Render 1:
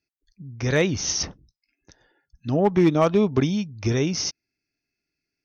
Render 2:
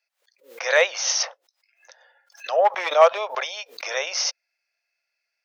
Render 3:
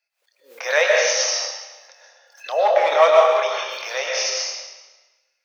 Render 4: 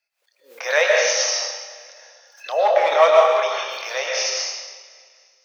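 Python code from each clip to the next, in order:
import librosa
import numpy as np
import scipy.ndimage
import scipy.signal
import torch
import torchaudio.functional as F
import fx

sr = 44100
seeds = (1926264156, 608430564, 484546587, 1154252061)

y1 = scipy.signal.sosfilt(scipy.signal.cheby1(6, 1.0, 520.0, 'highpass', fs=sr, output='sos'), x)
y1 = fx.high_shelf(y1, sr, hz=5700.0, db=-9.5)
y1 = fx.pre_swell(y1, sr, db_per_s=150.0)
y1 = y1 * librosa.db_to_amplitude(8.0)
y2 = fx.doubler(y1, sr, ms=27.0, db=-9)
y2 = fx.rev_freeverb(y2, sr, rt60_s=1.2, hf_ratio=0.95, predelay_ms=85, drr_db=-1.5)
y2 = y2 * librosa.db_to_amplitude(-1.0)
y3 = fx.echo_feedback(y2, sr, ms=262, feedback_pct=55, wet_db=-21.0)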